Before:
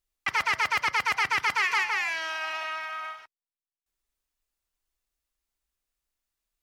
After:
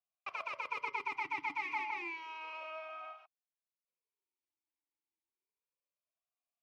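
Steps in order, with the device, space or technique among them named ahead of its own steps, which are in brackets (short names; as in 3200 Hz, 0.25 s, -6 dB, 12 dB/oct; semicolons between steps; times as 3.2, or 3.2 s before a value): talk box (tube stage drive 22 dB, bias 0.45; vowel sweep a-u 0.31 Hz); 0.68–2.02 comb 7.1 ms, depth 64%; gain +3 dB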